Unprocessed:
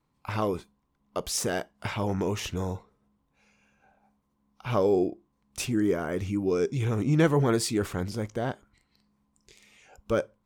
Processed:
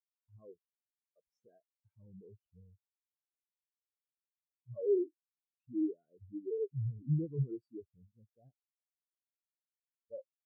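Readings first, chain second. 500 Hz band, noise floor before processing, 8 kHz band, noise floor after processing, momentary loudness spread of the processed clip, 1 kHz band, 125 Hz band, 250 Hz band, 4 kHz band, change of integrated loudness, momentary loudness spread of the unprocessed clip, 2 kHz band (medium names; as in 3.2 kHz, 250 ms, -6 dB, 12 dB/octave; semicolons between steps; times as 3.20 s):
-11.5 dB, -74 dBFS, under -40 dB, under -85 dBFS, 18 LU, under -40 dB, -10.0 dB, -12.5 dB, under -40 dB, -8.5 dB, 12 LU, under -40 dB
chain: saturation -22 dBFS, distortion -13 dB; spectral contrast expander 4:1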